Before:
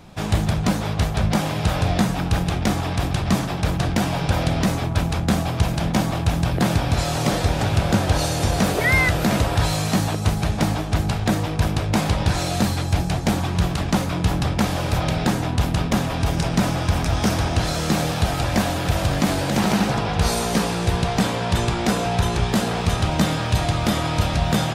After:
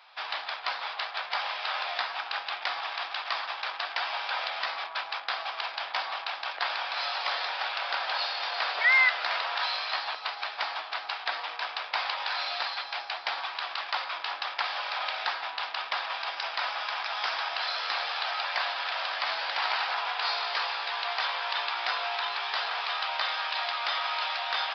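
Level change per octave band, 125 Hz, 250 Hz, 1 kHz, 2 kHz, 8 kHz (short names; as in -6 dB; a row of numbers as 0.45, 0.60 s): under -40 dB, under -40 dB, -5.0 dB, -1.5 dB, under -25 dB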